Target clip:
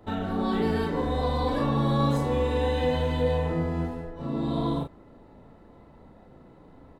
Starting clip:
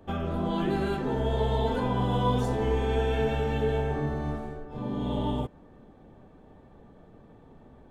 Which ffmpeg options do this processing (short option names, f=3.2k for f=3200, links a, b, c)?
-filter_complex "[0:a]asplit=2[a][b];[b]adelay=41,volume=-5dB[c];[a][c]amix=inputs=2:normalize=0,asetrate=49833,aresample=44100"